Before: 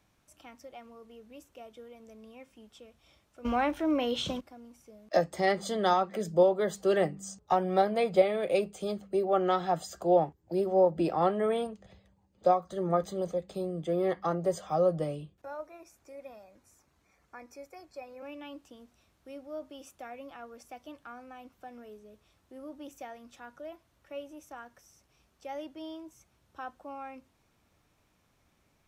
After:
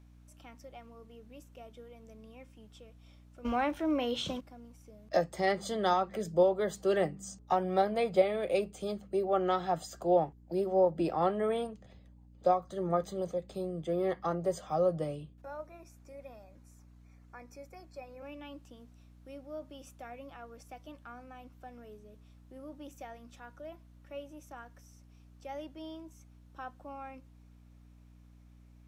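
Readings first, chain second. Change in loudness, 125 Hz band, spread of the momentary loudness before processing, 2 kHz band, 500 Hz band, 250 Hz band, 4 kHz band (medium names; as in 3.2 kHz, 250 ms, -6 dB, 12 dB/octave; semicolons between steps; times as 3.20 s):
-2.5 dB, -2.0 dB, 22 LU, -2.5 dB, -2.5 dB, -2.5 dB, -2.5 dB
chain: hum 60 Hz, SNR 22 dB; trim -2.5 dB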